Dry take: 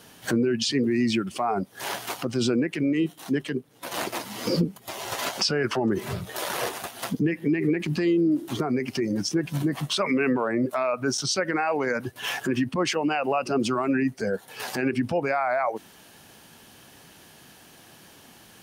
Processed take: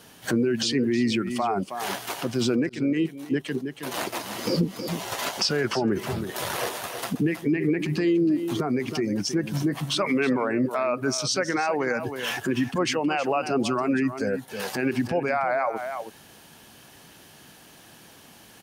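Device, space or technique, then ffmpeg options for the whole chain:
ducked delay: -filter_complex "[0:a]asplit=3[link_01][link_02][link_03];[link_02]adelay=319,volume=-7.5dB[link_04];[link_03]apad=whole_len=835497[link_05];[link_04][link_05]sidechaincompress=threshold=-29dB:ratio=8:attack=22:release=127[link_06];[link_01][link_06]amix=inputs=2:normalize=0,asettb=1/sr,asplit=3[link_07][link_08][link_09];[link_07]atrim=end=2.694[link_10];[link_08]atrim=start=2.69:end=3.44,asetpts=PTS-STARTPTS,afade=type=in:duration=0.004:curve=qsin,afade=type=out:start_time=0.746:duration=0.004:curve=qsin,agate=range=-33dB:threshold=-23dB:ratio=3:detection=peak[link_11];[link_09]atrim=start=3.436[link_12];[link_10][link_11]acrossfade=duration=0.004:curve1=hsin:curve2=qsin[link_13];[link_13][link_12]acrossfade=duration=0.004:curve1=qsin:curve2=hsin"

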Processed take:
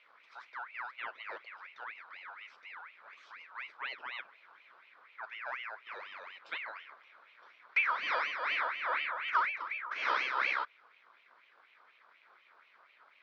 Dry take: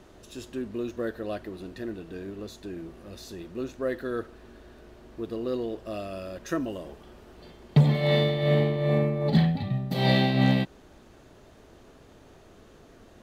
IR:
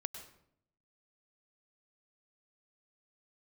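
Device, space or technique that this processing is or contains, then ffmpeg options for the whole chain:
voice changer toy: -af "aeval=exprs='val(0)*sin(2*PI*1800*n/s+1800*0.4/4.1*sin(2*PI*4.1*n/s))':channel_layout=same,highpass=530,equalizer=frequency=770:width_type=q:width=4:gain=-8,equalizer=frequency=1800:width_type=q:width=4:gain=-7,equalizer=frequency=2800:width_type=q:width=4:gain=-9,lowpass=frequency=3600:width=0.5412,lowpass=frequency=3600:width=1.3066,volume=-3.5dB"

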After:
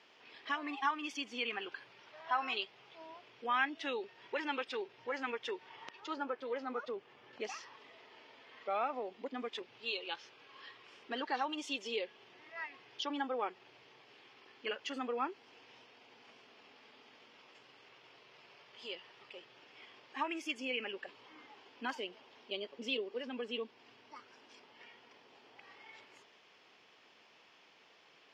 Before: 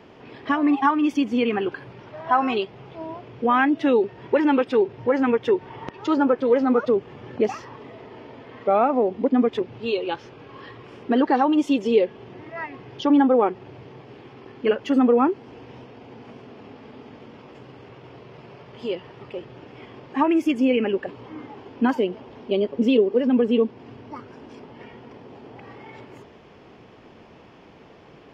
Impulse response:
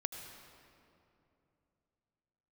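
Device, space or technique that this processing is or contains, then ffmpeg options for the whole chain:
piezo pickup straight into a mixer: -filter_complex "[0:a]lowpass=5100,aderivative,asettb=1/sr,asplit=3[link_01][link_02][link_03];[link_01]atrim=end=6.004[link_04];[link_02]atrim=start=6:end=7.33,asetpts=PTS-STARTPTS,afade=type=in:duration=0.004:curve=qsin,afade=type=out:start_time=1.326:duration=0.004:curve=qsin,highshelf=frequency=2600:gain=-8.5[link_05];[link_03]atrim=start=7.326[link_06];[link_04][link_05]acrossfade=duration=0.004:curve1=hsin:curve2=qsin[link_07];[link_07][link_06]acrossfade=duration=0.004:curve1=qsin:curve2=hsin,volume=3dB"

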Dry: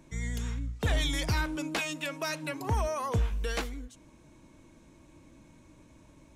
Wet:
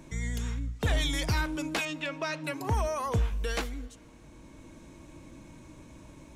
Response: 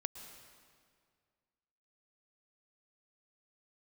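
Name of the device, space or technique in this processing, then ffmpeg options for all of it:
ducked reverb: -filter_complex "[0:a]asettb=1/sr,asplit=3[link_01][link_02][link_03];[link_01]atrim=end=1.854[link_04];[link_02]atrim=start=1.85:end=2.44,asetpts=PTS-STARTPTS,afade=type=in:duration=0.004:curve=qsin,afade=type=out:start_time=0.586:duration=0.004:curve=qsin,lowpass=4400[link_05];[link_03]atrim=start=2.436[link_06];[link_04][link_05]acrossfade=duration=0.004:curve1=hsin:curve2=qsin[link_07];[link_07][link_06]acrossfade=duration=0.004:curve1=qsin:curve2=hsin,asplit=3[link_08][link_09][link_10];[1:a]atrim=start_sample=2205[link_11];[link_09][link_11]afir=irnorm=-1:irlink=0[link_12];[link_10]apad=whole_len=280216[link_13];[link_12][link_13]sidechaincompress=threshold=-48dB:ratio=12:attack=16:release=799,volume=3dB[link_14];[link_08][link_14]amix=inputs=2:normalize=0"

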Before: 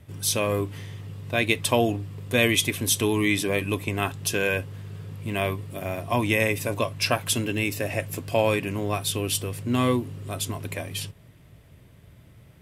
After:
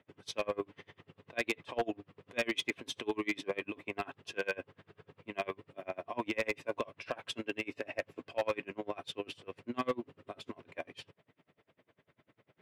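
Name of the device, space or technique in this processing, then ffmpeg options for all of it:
helicopter radio: -af "highpass=330,lowpass=2700,aeval=exprs='val(0)*pow(10,-30*(0.5-0.5*cos(2*PI*10*n/s))/20)':channel_layout=same,asoftclip=type=hard:threshold=-22.5dB,volume=-2dB"

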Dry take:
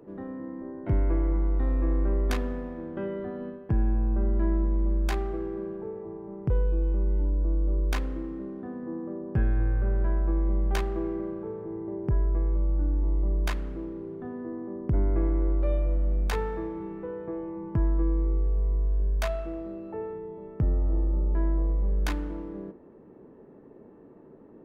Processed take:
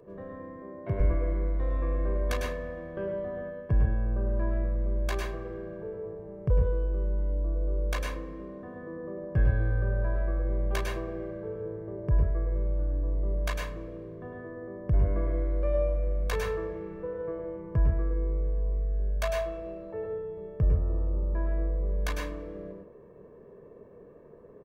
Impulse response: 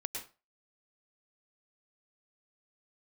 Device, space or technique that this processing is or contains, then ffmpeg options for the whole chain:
microphone above a desk: -filter_complex "[0:a]asettb=1/sr,asplit=3[link_01][link_02][link_03];[link_01]atrim=end=0.564[link_04];[link_02]atrim=start=0.56:end=1,asetpts=PTS-STARTPTS,afade=type=in:duration=0.004:curve=qsin,afade=type=out:start_time=0.436:duration=0.004:curve=qsin,highpass=110[link_05];[link_03]atrim=start=0.996[link_06];[link_04][link_05]acrossfade=duration=0.004:curve1=hsin:curve2=qsin[link_07];[link_07][link_06]acrossfade=duration=0.004:curve1=qsin:curve2=hsin,aecho=1:1:1.8:0.69[link_08];[1:a]atrim=start_sample=2205[link_09];[link_08][link_09]afir=irnorm=-1:irlink=0,volume=-1dB"

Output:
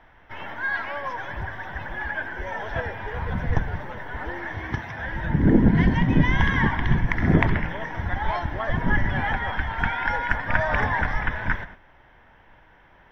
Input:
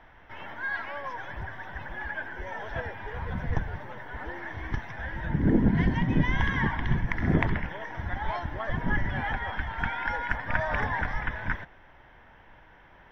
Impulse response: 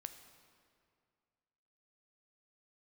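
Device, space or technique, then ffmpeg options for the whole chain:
keyed gated reverb: -filter_complex "[0:a]asplit=3[link_01][link_02][link_03];[1:a]atrim=start_sample=2205[link_04];[link_02][link_04]afir=irnorm=-1:irlink=0[link_05];[link_03]apad=whole_len=578411[link_06];[link_05][link_06]sidechaingate=range=-33dB:threshold=-47dB:ratio=16:detection=peak,volume=3.5dB[link_07];[link_01][link_07]amix=inputs=2:normalize=0,asettb=1/sr,asplit=3[link_08][link_09][link_10];[link_08]atrim=end=4.594[link_11];[link_09]atrim=start=4.59:end=5.08,asetpts=PTS-STARTPTS,afade=type=in:duration=0.004:curve=qsin,afade=type=out:start_time=0.486:duration=0.004:curve=qsin,highpass=78[link_12];[link_10]atrim=start=5.076[link_13];[link_11][link_12]acrossfade=duration=0.004:curve1=hsin:curve2=qsin[link_14];[link_14][link_13]acrossfade=duration=0.004:curve1=qsin:curve2=hsin"

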